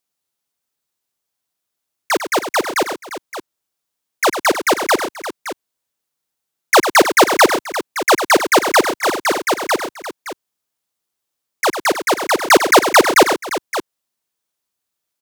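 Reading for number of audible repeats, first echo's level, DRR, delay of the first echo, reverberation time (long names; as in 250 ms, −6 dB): 3, −9.5 dB, no reverb audible, 99 ms, no reverb audible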